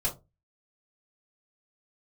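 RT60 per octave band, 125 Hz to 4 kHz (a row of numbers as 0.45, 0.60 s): 0.40, 0.30, 0.25, 0.20, 0.15, 0.15 s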